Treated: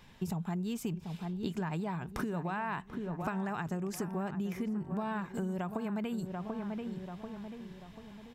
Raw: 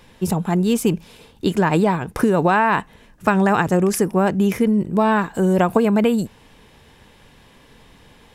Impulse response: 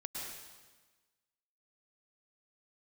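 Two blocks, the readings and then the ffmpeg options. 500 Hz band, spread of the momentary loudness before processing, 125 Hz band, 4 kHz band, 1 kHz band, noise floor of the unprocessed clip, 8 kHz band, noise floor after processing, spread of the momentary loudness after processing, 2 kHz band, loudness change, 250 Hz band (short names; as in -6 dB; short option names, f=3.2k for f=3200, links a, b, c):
-20.5 dB, 7 LU, -14.5 dB, -17.0 dB, -19.0 dB, -51 dBFS, -18.5 dB, -52 dBFS, 8 LU, -18.5 dB, -18.5 dB, -16.5 dB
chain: -filter_complex "[0:a]equalizer=f=160:t=o:w=0.33:g=5,equalizer=f=315:t=o:w=0.33:g=-4,equalizer=f=500:t=o:w=0.33:g=-8,equalizer=f=10k:t=o:w=0.33:g=-9,asplit=2[a][b];[b]adelay=738,lowpass=f=1.7k:p=1,volume=-11.5dB,asplit=2[c][d];[d]adelay=738,lowpass=f=1.7k:p=1,volume=0.44,asplit=2[e][f];[f]adelay=738,lowpass=f=1.7k:p=1,volume=0.44,asplit=2[g][h];[h]adelay=738,lowpass=f=1.7k:p=1,volume=0.44[i];[a][c][e][g][i]amix=inputs=5:normalize=0,acompressor=threshold=-25dB:ratio=6,volume=-8dB"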